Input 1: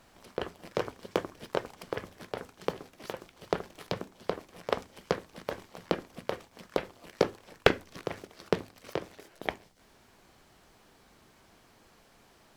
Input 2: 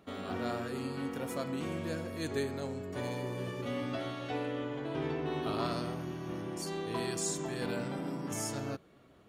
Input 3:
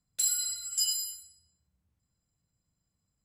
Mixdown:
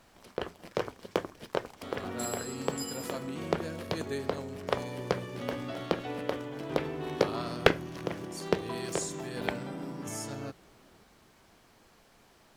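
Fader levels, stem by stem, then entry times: -0.5, -1.5, -12.0 dB; 0.00, 1.75, 2.00 s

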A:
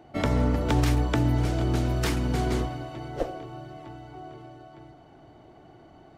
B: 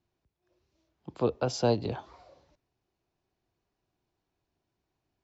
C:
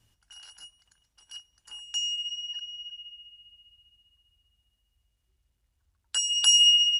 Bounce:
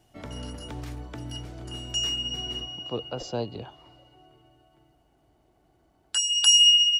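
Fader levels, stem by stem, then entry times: -14.5, -5.0, +2.0 dB; 0.00, 1.70, 0.00 s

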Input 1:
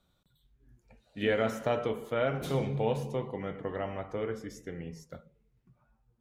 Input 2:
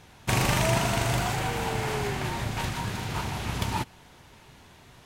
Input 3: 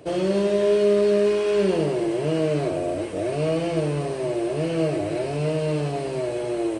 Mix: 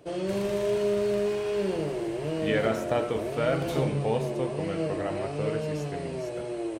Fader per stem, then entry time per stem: +2.0, -17.0, -7.5 dB; 1.25, 0.00, 0.00 s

